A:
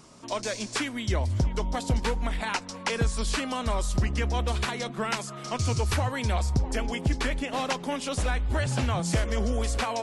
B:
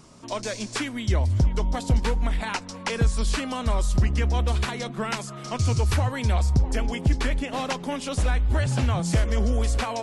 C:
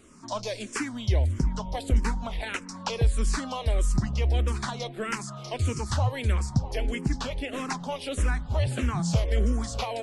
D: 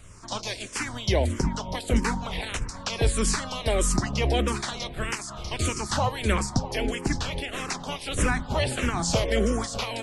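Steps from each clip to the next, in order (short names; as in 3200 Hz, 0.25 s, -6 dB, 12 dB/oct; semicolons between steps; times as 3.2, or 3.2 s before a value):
low shelf 190 Hz +6 dB
endless phaser -1.6 Hz
spectral limiter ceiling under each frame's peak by 16 dB; wind noise 81 Hz -40 dBFS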